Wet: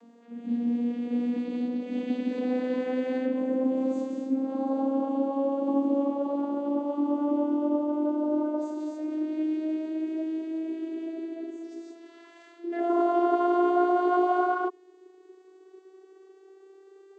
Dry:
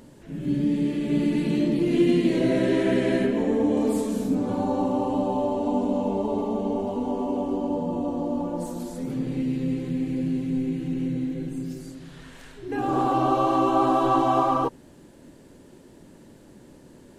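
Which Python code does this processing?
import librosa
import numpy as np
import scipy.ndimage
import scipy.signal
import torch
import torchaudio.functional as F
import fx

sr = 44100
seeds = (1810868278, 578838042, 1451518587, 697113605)

y = fx.vocoder_glide(x, sr, note=58, semitones=9)
y = fx.rider(y, sr, range_db=3, speed_s=2.0)
y = scipy.signal.sosfilt(scipy.signal.butter(2, 360.0, 'highpass', fs=sr, output='sos'), y)
y = y * librosa.db_to_amplitude(2.5)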